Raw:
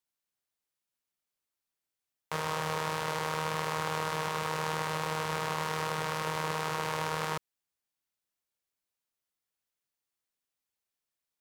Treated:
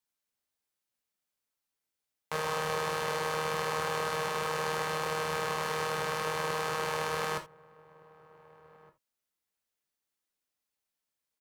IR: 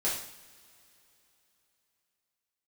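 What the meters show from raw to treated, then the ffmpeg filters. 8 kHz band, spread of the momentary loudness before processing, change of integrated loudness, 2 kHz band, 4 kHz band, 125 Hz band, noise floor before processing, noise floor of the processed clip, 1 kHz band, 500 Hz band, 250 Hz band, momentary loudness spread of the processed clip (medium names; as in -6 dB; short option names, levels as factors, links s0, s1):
+1.0 dB, 1 LU, +0.5 dB, +1.5 dB, +0.5 dB, -4.0 dB, under -85 dBFS, under -85 dBFS, 0.0 dB, +3.0 dB, -3.0 dB, 1 LU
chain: -filter_complex "[0:a]asplit=2[s0][s1];[s1]adelay=1516,volume=0.0794,highshelf=f=4000:g=-34.1[s2];[s0][s2]amix=inputs=2:normalize=0,asplit=2[s3][s4];[1:a]atrim=start_sample=2205,atrim=end_sample=3969[s5];[s4][s5]afir=irnorm=-1:irlink=0,volume=0.376[s6];[s3][s6]amix=inputs=2:normalize=0,volume=0.75"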